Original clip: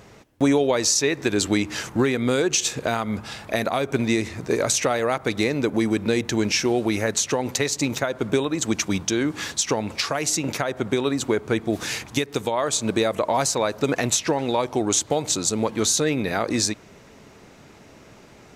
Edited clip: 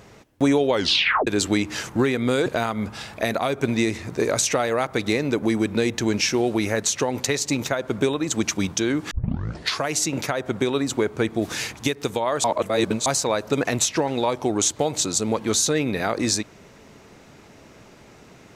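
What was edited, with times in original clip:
0:00.72: tape stop 0.55 s
0:02.46–0:02.77: remove
0:09.42: tape start 0.68 s
0:12.75–0:13.37: reverse

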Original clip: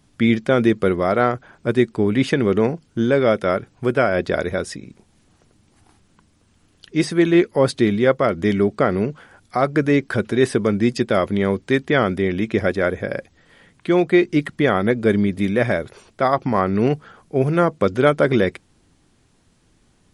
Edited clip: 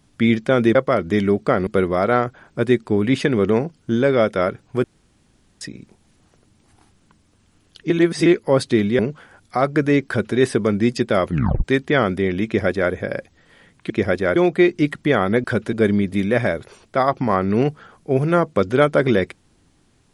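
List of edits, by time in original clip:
0:03.92–0:04.69: fill with room tone
0:06.98–0:07.34: reverse
0:08.07–0:08.99: move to 0:00.75
0:10.07–0:10.36: duplicate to 0:14.98
0:11.28: tape stop 0.36 s
0:12.46–0:12.92: duplicate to 0:13.90

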